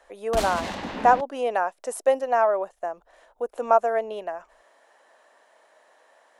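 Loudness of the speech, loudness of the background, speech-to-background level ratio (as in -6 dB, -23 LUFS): -24.5 LUFS, -33.0 LUFS, 8.5 dB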